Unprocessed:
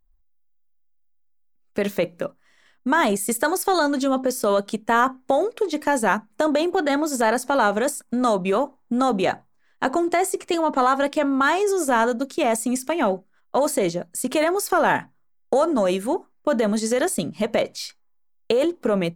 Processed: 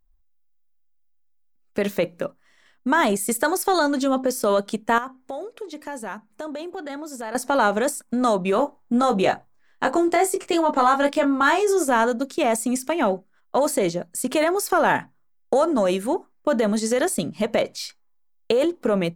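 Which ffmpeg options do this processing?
-filter_complex "[0:a]asettb=1/sr,asplit=3[a][b][c];[a]atrim=end=4.984[d];[b]atrim=start=4.98:end=7.35,asetpts=PTS-STARTPTS,afade=t=in:d=0.004:c=qsin,afade=t=out:st=2.366:d=0.004:c=qsin,acompressor=threshold=-51dB:ratio=1.5:attack=3.2:release=140:knee=1:detection=peak[e];[c]atrim=start=7.346[f];[d][e]acrossfade=d=0.004:c1=hsin:c2=qsin[g];[g][f]acrossfade=d=0.004:c1=qsin:c2=hsin,asettb=1/sr,asplit=3[h][i][j];[h]atrim=end=8.564[k];[i]atrim=start=8.56:end=11.83,asetpts=PTS-STARTPTS,afade=t=in:d=0.004:c=qsin,afade=t=out:st=3.266:d=0.004:c=qsin,asplit=2[l][m];[m]adelay=21,volume=-5.5dB[n];[l][n]amix=inputs=2:normalize=0,atrim=end_sample=144207[o];[j]atrim=start=11.826[p];[k][o]acrossfade=d=0.004:c1=hsin:c2=qsin[q];[q][p]acrossfade=d=0.004:c1=qsin:c2=hsin"

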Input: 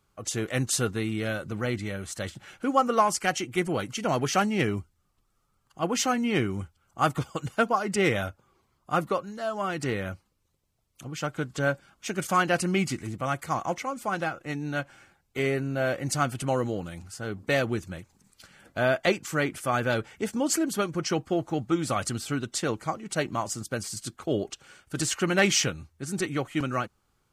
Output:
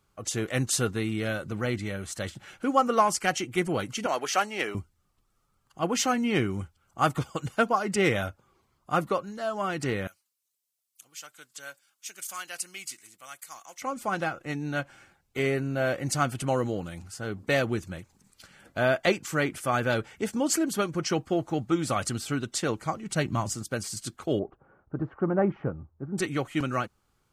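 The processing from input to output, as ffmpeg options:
-filter_complex "[0:a]asettb=1/sr,asplit=3[a][b][c];[a]atrim=end=4.064[d];[b]atrim=start=4.06:end=4.75,asetpts=PTS-STARTPTS,afade=t=in:d=0.004:c=qsin,afade=t=out:st=0.686:d=0.004:c=qsin,highpass=500[e];[c]atrim=start=4.746[f];[d][e]acrossfade=d=0.004:c1=hsin:c2=qsin[g];[g][f]acrossfade=d=0.004:c1=qsin:c2=hsin,asettb=1/sr,asplit=3[h][i][j];[h]atrim=end=10.074[k];[i]atrim=start=10.07:end=13.82,asetpts=PTS-STARTPTS,afade=t=in:d=0.004:c=qsin,afade=t=out:st=3.746:d=0.004:c=qsin,aderivative[l];[j]atrim=start=13.816[m];[k][l]acrossfade=d=0.004:c1=hsin:c2=qsin[n];[n][m]acrossfade=d=0.004:c1=qsin:c2=hsin,asettb=1/sr,asplit=3[o][p][q];[o]atrim=end=22.774[r];[p]atrim=start=22.77:end=23.55,asetpts=PTS-STARTPTS,afade=t=in:d=0.004:c=qsin,afade=t=out:st=0.776:d=0.004:c=qsin,asubboost=boost=11.5:cutoff=240[s];[q]atrim=start=23.546[t];[r][s]acrossfade=d=0.004:c1=hsin:c2=qsin[u];[u][t]acrossfade=d=0.004:c1=qsin:c2=hsin,asettb=1/sr,asplit=3[v][w][x];[v]atrim=end=24.394[y];[w]atrim=start=24.39:end=26.18,asetpts=PTS-STARTPTS,afade=t=in:d=0.004:c=qsin,afade=t=out:st=1.786:d=0.004:c=qsin,lowpass=f=1.1k:w=0.5412,lowpass=f=1.1k:w=1.3066[z];[x]atrim=start=26.176[aa];[y][z]acrossfade=d=0.004:c1=hsin:c2=qsin[ab];[ab][aa]acrossfade=d=0.004:c1=qsin:c2=hsin"

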